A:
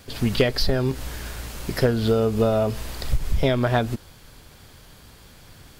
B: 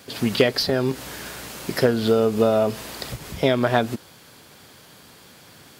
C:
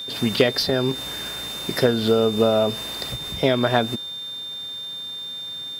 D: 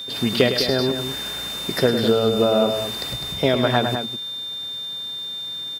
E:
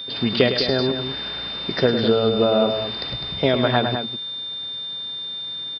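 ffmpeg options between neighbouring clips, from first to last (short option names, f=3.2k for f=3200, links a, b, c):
-af "highpass=170,volume=2.5dB"
-af "aeval=exprs='val(0)+0.0316*sin(2*PI*3600*n/s)':c=same"
-af "aecho=1:1:105|204.1:0.355|0.355"
-af "aresample=11025,aresample=44100"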